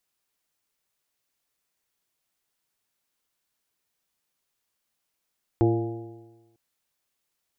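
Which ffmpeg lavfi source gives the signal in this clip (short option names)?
-f lavfi -i "aevalsrc='0.1*pow(10,-3*t/1.18)*sin(2*PI*113.11*t)+0.0251*pow(10,-3*t/1.18)*sin(2*PI*226.9*t)+0.141*pow(10,-3*t/1.18)*sin(2*PI*342.04*t)+0.0355*pow(10,-3*t/1.18)*sin(2*PI*459.18*t)+0.015*pow(10,-3*t/1.18)*sin(2*PI*578.95*t)+0.0316*pow(10,-3*t/1.18)*sin(2*PI*701.98*t)+0.0224*pow(10,-3*t/1.18)*sin(2*PI*828.85*t)':d=0.95:s=44100"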